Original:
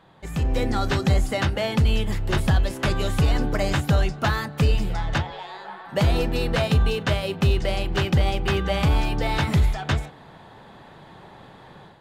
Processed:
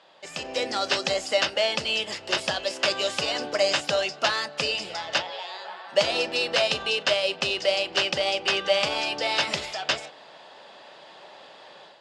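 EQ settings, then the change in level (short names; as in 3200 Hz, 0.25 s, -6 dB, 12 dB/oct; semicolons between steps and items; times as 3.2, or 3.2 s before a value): speaker cabinet 400–8000 Hz, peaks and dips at 590 Hz +9 dB, 2800 Hz +7 dB, 5000 Hz +9 dB; high shelf 2600 Hz +9 dB; -3.5 dB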